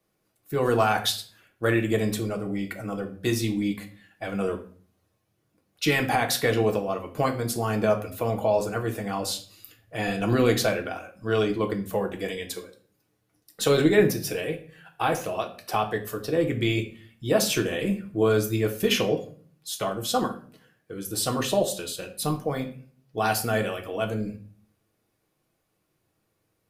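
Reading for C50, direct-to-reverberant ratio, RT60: 12.0 dB, 2.5 dB, 0.45 s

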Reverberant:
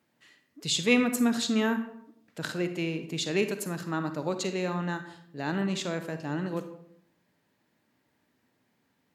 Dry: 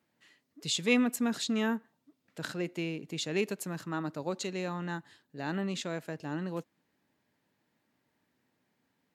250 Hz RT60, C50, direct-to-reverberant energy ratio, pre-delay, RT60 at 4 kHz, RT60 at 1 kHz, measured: 0.85 s, 9.5 dB, 8.5 dB, 40 ms, 0.45 s, 0.65 s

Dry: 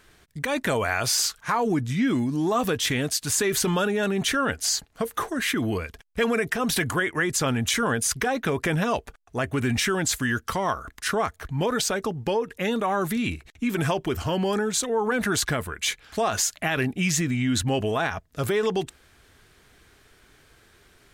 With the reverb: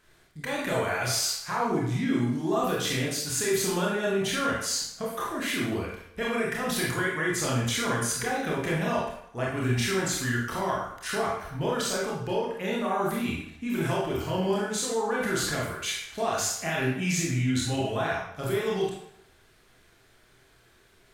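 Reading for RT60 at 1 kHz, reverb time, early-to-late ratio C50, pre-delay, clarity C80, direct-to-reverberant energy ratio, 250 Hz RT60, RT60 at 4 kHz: 0.75 s, 0.75 s, 1.0 dB, 23 ms, 5.5 dB, -5.0 dB, 0.70 s, 0.65 s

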